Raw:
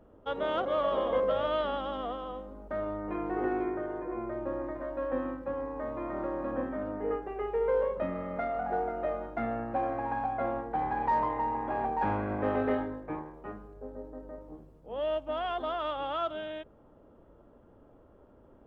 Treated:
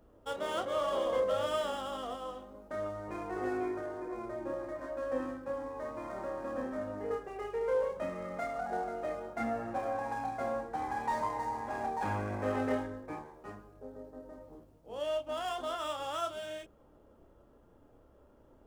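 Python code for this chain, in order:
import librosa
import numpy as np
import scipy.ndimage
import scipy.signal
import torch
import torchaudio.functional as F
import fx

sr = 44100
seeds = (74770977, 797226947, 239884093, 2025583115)

y = scipy.signal.medfilt(x, 9)
y = fx.chorus_voices(y, sr, voices=6, hz=0.86, base_ms=29, depth_ms=1.9, mix_pct=35)
y = fx.high_shelf(y, sr, hz=2900.0, db=12.0)
y = y * librosa.db_to_amplitude(-2.0)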